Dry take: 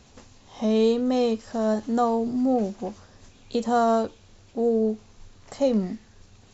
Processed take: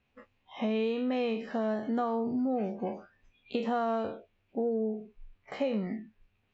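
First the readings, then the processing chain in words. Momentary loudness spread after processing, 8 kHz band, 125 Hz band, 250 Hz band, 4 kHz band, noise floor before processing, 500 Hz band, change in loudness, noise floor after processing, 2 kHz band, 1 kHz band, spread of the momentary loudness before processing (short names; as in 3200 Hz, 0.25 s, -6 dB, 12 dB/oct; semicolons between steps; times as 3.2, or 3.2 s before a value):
11 LU, n/a, -7.0 dB, -7.0 dB, -7.0 dB, -54 dBFS, -8.0 dB, -8.0 dB, -74 dBFS, -1.5 dB, -8.0 dB, 13 LU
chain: spectral trails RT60 0.41 s; spectral noise reduction 21 dB; synth low-pass 2500 Hz, resonance Q 3; compressor 5:1, threshold -25 dBFS, peak gain reduction 8.5 dB; gain -2.5 dB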